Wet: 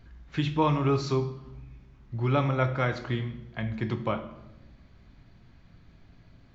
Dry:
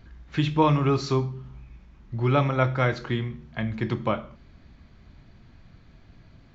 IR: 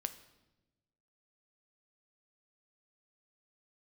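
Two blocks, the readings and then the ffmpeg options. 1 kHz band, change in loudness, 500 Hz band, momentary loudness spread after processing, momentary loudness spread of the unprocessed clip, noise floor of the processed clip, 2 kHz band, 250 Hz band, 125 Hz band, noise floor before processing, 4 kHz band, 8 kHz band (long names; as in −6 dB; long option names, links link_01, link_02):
−3.5 dB, −3.5 dB, −3.0 dB, 16 LU, 13 LU, −56 dBFS, −3.5 dB, −3.5 dB, −3.0 dB, −54 dBFS, −3.5 dB, can't be measured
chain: -filter_complex "[1:a]atrim=start_sample=2205[link_01];[0:a][link_01]afir=irnorm=-1:irlink=0,volume=-2.5dB"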